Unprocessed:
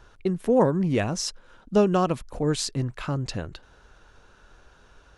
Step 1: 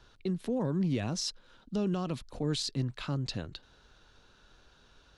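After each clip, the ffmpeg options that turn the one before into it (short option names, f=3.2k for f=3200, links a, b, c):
-filter_complex "[0:a]equalizer=f=125:t=o:w=1:g=3,equalizer=f=250:t=o:w=1:g=4,equalizer=f=4k:t=o:w=1:g=11,acrossover=split=170[a][b];[b]alimiter=limit=-16.5dB:level=0:latency=1:release=14[c];[a][c]amix=inputs=2:normalize=0,volume=-8.5dB"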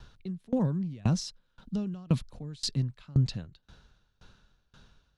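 -af "lowshelf=f=240:t=q:w=1.5:g=6.5,aeval=exprs='val(0)*pow(10,-28*if(lt(mod(1.9*n/s,1),2*abs(1.9)/1000),1-mod(1.9*n/s,1)/(2*abs(1.9)/1000),(mod(1.9*n/s,1)-2*abs(1.9)/1000)/(1-2*abs(1.9)/1000))/20)':c=same,volume=5.5dB"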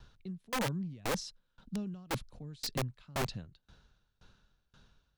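-af "aeval=exprs='(mod(12.6*val(0)+1,2)-1)/12.6':c=same,volume=-5.5dB"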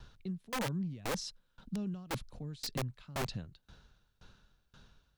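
-af "alimiter=level_in=9dB:limit=-24dB:level=0:latency=1:release=132,volume=-9dB,volume=3dB"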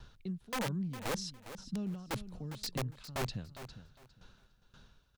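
-af "aecho=1:1:406|812|1218:0.251|0.0527|0.0111"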